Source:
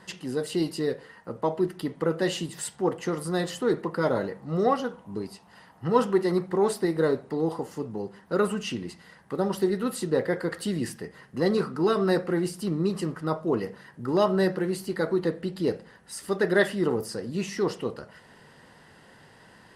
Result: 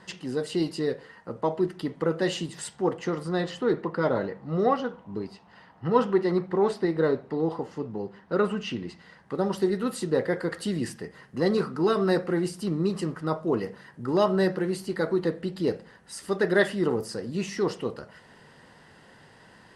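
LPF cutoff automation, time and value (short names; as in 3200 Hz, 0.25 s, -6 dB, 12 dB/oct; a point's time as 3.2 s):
2.84 s 7800 Hz
3.35 s 4300 Hz
8.72 s 4300 Hz
9.74 s 9800 Hz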